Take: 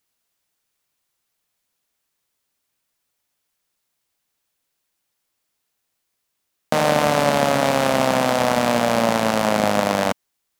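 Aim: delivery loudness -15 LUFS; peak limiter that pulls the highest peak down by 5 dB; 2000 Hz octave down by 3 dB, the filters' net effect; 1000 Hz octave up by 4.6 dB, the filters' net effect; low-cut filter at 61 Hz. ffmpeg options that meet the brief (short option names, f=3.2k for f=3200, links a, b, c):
-af "highpass=61,equalizer=f=1k:t=o:g=7.5,equalizer=f=2k:t=o:g=-7,volume=4dB,alimiter=limit=-2dB:level=0:latency=1"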